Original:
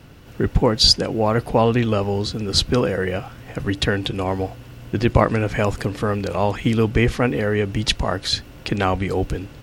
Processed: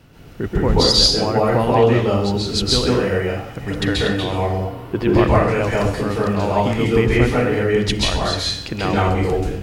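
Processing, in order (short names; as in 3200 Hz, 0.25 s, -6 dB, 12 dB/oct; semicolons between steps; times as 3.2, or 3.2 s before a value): 4.49–5.04 fifteen-band EQ 400 Hz +9 dB, 1000 Hz +12 dB, 6300 Hz -8 dB; plate-style reverb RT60 0.63 s, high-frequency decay 0.9×, pre-delay 0.12 s, DRR -5.5 dB; gain -4 dB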